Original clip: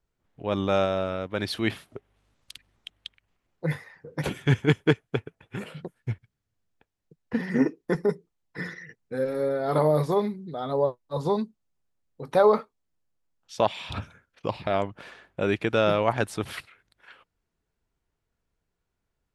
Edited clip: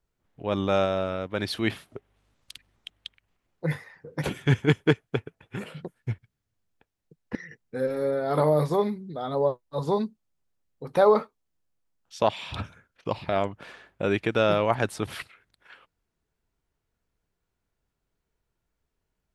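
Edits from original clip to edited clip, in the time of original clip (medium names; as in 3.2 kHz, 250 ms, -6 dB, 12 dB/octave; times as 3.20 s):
7.35–8.73 s: delete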